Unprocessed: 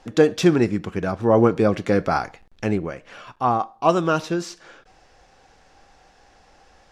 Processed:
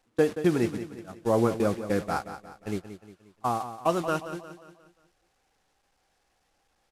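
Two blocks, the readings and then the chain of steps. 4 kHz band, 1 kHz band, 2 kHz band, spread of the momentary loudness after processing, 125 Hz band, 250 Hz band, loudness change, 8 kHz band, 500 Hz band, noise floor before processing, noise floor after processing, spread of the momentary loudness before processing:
-9.5 dB, -8.0 dB, -8.0 dB, 16 LU, -8.5 dB, -8.0 dB, -7.5 dB, -6.0 dB, -7.5 dB, -56 dBFS, -72 dBFS, 12 LU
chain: one-bit delta coder 64 kbps, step -27.5 dBFS; gate -20 dBFS, range -31 dB; on a send: feedback delay 178 ms, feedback 45%, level -11.5 dB; on the sum: trim -7.5 dB

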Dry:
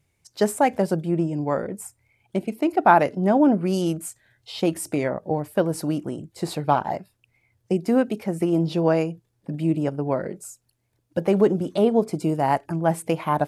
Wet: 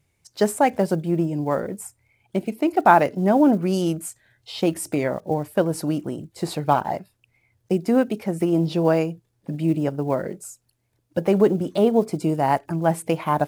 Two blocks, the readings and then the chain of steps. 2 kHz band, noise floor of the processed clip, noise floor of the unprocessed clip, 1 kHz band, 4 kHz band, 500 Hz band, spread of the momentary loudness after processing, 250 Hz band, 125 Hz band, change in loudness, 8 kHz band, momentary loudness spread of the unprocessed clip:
+1.0 dB, -70 dBFS, -71 dBFS, +1.0 dB, +1.0 dB, +1.0 dB, 13 LU, +1.0 dB, +1.0 dB, +1.0 dB, +1.0 dB, 13 LU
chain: block-companded coder 7-bit; trim +1 dB

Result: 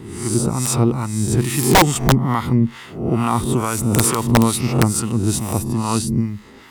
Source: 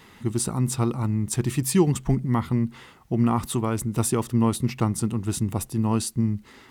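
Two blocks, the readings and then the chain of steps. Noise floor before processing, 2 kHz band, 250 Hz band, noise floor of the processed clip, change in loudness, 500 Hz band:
-51 dBFS, +14.5 dB, +5.5 dB, -40 dBFS, +6.5 dB, +7.0 dB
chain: reverse spectral sustain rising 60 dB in 0.65 s; harmonic tremolo 2.3 Hz, depth 70%, crossover 780 Hz; integer overflow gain 12.5 dB; trim +8 dB

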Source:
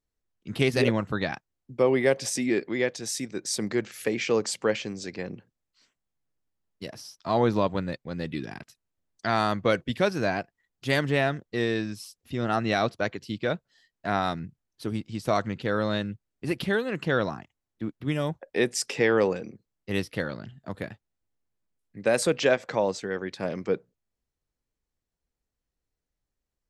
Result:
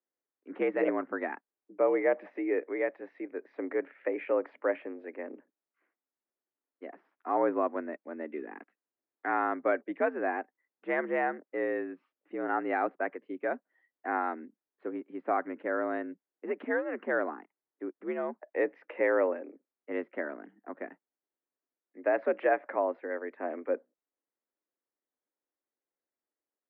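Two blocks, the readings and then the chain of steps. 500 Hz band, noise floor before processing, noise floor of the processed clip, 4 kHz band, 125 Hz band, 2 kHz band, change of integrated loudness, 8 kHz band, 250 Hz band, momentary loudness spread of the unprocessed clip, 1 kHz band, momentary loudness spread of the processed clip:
-4.0 dB, under -85 dBFS, under -85 dBFS, under -25 dB, under -25 dB, -5.0 dB, -5.0 dB, under -40 dB, -7.0 dB, 15 LU, -2.0 dB, 15 LU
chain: mistuned SSB +68 Hz 200–2000 Hz; trim -4 dB

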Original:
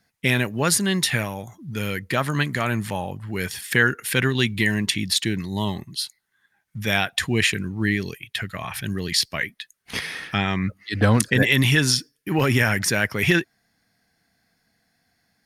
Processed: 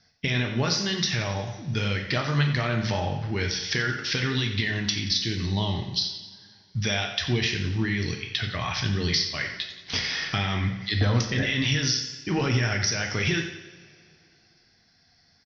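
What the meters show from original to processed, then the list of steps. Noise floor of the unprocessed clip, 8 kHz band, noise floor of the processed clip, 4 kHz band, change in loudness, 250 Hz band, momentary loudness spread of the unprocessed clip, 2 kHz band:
-72 dBFS, -6.0 dB, -62 dBFS, -0.5 dB, -3.5 dB, -5.0 dB, 12 LU, -6.0 dB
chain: Chebyshev low-pass 5.9 kHz, order 8; peak limiter -11.5 dBFS, peak gain reduction 7.5 dB; tone controls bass -3 dB, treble +14 dB; flange 0.89 Hz, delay 5.4 ms, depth 8.8 ms, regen -82%; compression 4:1, threshold -31 dBFS, peak gain reduction 14.5 dB; bass shelf 140 Hz +10 dB; feedback delay 89 ms, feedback 55%, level -13 dB; two-slope reverb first 0.57 s, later 2.8 s, from -20 dB, DRR 3 dB; trim +5 dB

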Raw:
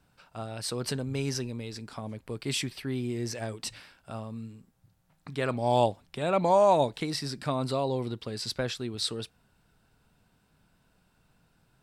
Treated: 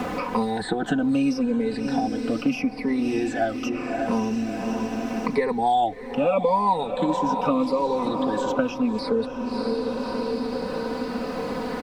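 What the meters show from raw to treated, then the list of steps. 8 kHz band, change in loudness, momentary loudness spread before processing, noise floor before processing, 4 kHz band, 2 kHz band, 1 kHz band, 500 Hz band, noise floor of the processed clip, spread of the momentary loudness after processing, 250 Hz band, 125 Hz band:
-4.5 dB, +5.5 dB, 16 LU, -69 dBFS, -1.5 dB, +7.5 dB, +7.0 dB, +5.0 dB, -33 dBFS, 7 LU, +12.5 dB, -2.0 dB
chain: drifting ripple filter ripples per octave 0.9, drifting -0.8 Hz, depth 23 dB; bass shelf 100 Hz -7.5 dB; added noise pink -55 dBFS; low-pass 1 kHz 6 dB/octave; comb 4 ms, depth 87%; echo that smears into a reverb 613 ms, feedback 49%, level -11 dB; three bands compressed up and down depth 100%; trim +2.5 dB

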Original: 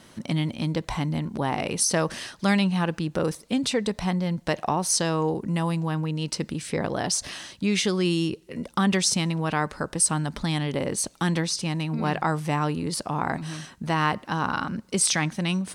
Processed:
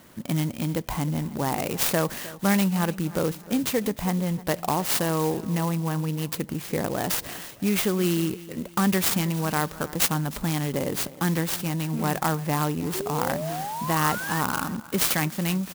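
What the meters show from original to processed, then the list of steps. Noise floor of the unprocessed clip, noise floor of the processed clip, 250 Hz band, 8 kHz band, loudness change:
-54 dBFS, -44 dBFS, 0.0 dB, -3.5 dB, 0.0 dB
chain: painted sound rise, 12.94–14.41 s, 360–1900 Hz -32 dBFS; feedback delay 309 ms, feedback 41%, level -18 dB; sampling jitter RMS 0.061 ms

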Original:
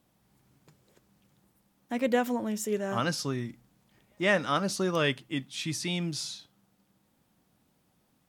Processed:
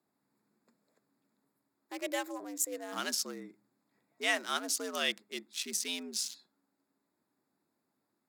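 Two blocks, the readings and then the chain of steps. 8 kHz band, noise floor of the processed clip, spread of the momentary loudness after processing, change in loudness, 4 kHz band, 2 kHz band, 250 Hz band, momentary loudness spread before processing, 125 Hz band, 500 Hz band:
+3.5 dB, -83 dBFS, 9 LU, -4.5 dB, -0.5 dB, -4.0 dB, -12.0 dB, 10 LU, under -25 dB, -10.5 dB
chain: local Wiener filter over 15 samples; frequency shift +81 Hz; pre-emphasis filter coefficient 0.9; trim +7.5 dB

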